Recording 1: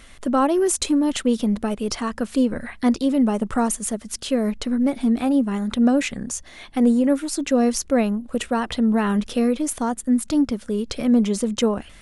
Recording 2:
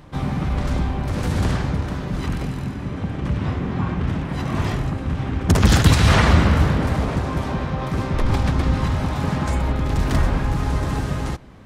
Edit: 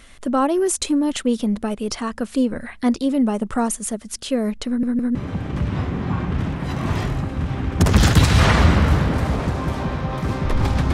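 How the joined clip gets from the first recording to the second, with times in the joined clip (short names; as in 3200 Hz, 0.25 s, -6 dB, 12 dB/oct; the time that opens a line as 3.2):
recording 1
4.67 stutter in place 0.16 s, 3 plays
5.15 switch to recording 2 from 2.84 s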